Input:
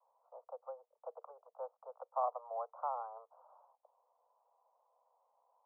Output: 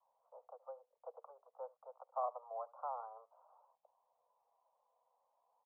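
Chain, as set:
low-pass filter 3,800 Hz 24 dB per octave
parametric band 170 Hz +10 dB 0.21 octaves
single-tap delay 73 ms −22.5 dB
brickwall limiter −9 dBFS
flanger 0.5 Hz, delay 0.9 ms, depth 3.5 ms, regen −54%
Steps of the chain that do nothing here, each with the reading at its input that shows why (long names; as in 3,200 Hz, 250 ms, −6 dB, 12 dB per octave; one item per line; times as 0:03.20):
low-pass filter 3,800 Hz: nothing at its input above 1,400 Hz
parametric band 170 Hz: nothing at its input below 430 Hz
brickwall limiter −9 dBFS: peak of its input −24.0 dBFS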